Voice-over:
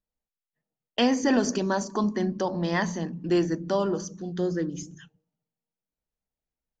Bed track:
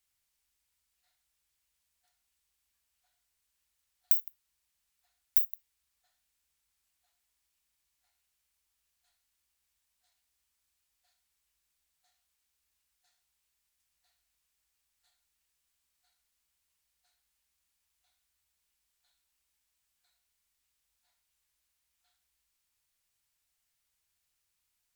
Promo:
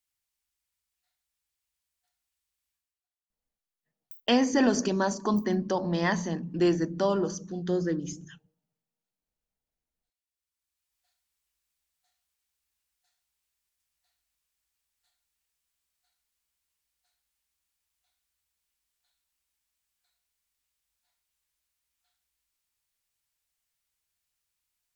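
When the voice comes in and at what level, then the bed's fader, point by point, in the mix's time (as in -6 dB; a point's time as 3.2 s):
3.30 s, -0.5 dB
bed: 2.73 s -5 dB
3.08 s -22.5 dB
9.85 s -22.5 dB
10.97 s -2.5 dB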